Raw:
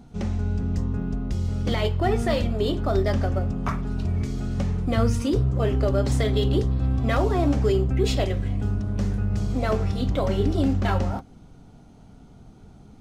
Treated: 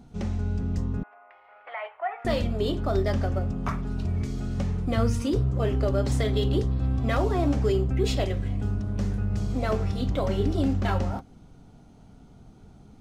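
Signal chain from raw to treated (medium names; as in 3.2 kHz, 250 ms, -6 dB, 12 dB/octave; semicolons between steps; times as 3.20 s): 1.03–2.25 s: elliptic band-pass 680–2300 Hz, stop band 60 dB; trim -2.5 dB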